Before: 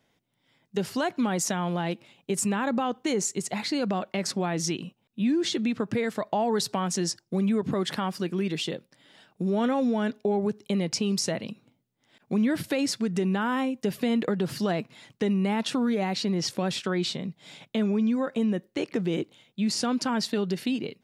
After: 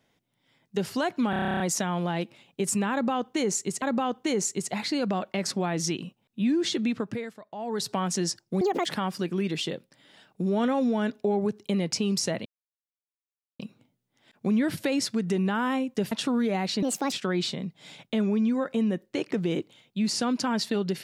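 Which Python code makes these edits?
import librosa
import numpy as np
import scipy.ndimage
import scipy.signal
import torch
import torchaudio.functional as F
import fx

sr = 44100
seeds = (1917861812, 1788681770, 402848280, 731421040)

y = fx.edit(x, sr, fx.stutter(start_s=1.3, slice_s=0.03, count=11),
    fx.repeat(start_s=2.62, length_s=0.9, count=2),
    fx.fade_down_up(start_s=5.71, length_s=1.06, db=-16.5, fade_s=0.46),
    fx.speed_span(start_s=7.41, length_s=0.45, speed=1.84),
    fx.insert_silence(at_s=11.46, length_s=1.14),
    fx.cut(start_s=13.98, length_s=1.61),
    fx.speed_span(start_s=16.3, length_s=0.44, speed=1.48), tone=tone)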